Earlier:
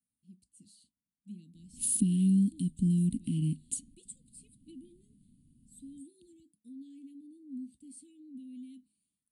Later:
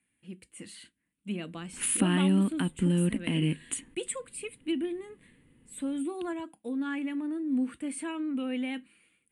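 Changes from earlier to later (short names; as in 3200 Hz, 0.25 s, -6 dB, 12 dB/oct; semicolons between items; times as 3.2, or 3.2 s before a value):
speech +10.5 dB; master: remove elliptic band-stop 240–4400 Hz, stop band 60 dB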